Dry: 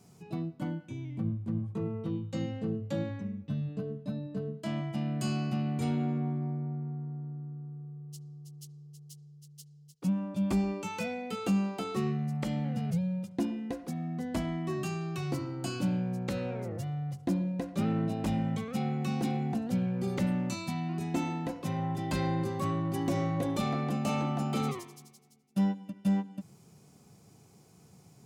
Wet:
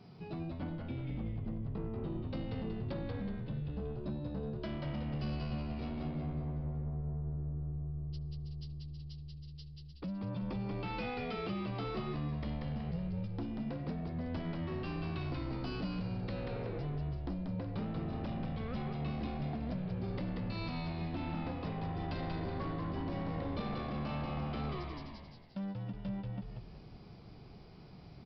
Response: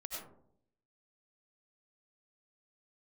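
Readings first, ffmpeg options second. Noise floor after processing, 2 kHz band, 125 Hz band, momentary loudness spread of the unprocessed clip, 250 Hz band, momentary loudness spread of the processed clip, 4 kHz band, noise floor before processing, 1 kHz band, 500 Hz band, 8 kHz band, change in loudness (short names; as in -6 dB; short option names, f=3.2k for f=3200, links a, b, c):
-53 dBFS, -4.5 dB, -4.5 dB, 11 LU, -7.5 dB, 8 LU, -5.0 dB, -58 dBFS, -6.0 dB, -5.5 dB, under -25 dB, -6.5 dB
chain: -filter_complex "[0:a]acompressor=threshold=-38dB:ratio=6,aresample=11025,asoftclip=type=tanh:threshold=-38.5dB,aresample=44100,asplit=7[a][b][c][d][e][f][g];[b]adelay=186,afreqshift=-77,volume=-3dB[h];[c]adelay=372,afreqshift=-154,volume=-9.9dB[i];[d]adelay=558,afreqshift=-231,volume=-16.9dB[j];[e]adelay=744,afreqshift=-308,volume=-23.8dB[k];[f]adelay=930,afreqshift=-385,volume=-30.7dB[l];[g]adelay=1116,afreqshift=-462,volume=-37.7dB[m];[a][h][i][j][k][l][m]amix=inputs=7:normalize=0,volume=3.5dB"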